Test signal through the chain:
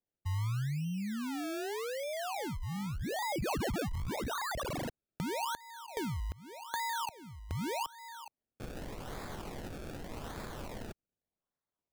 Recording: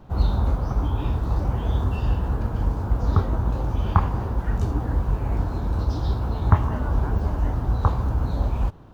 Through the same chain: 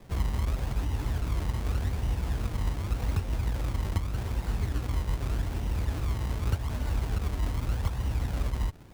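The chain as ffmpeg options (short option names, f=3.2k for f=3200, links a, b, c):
-filter_complex "[0:a]acrossover=split=120|2700[a][b][c];[a]acompressor=threshold=-21dB:ratio=4[d];[b]acompressor=threshold=-33dB:ratio=4[e];[c]acompressor=threshold=-32dB:ratio=4[f];[d][e][f]amix=inputs=3:normalize=0,acrusher=samples=30:mix=1:aa=0.000001:lfo=1:lforange=30:lforate=0.84,volume=-4dB"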